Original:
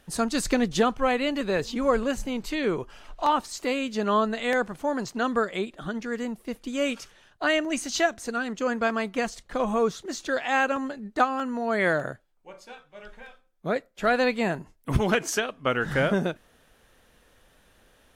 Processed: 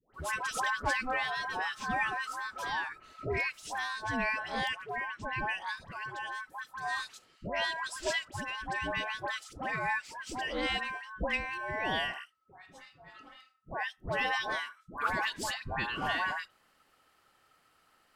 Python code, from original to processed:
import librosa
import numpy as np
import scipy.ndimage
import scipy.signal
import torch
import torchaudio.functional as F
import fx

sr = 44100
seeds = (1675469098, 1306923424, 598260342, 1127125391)

y = fx.lowpass(x, sr, hz=fx.line((4.69, 2500.0), (5.31, 1300.0)), slope=6, at=(4.69, 5.31), fade=0.02)
y = y * np.sin(2.0 * np.pi * 1300.0 * np.arange(len(y)) / sr)
y = fx.dispersion(y, sr, late='highs', ms=144.0, hz=960.0)
y = y * 10.0 ** (-5.5 / 20.0)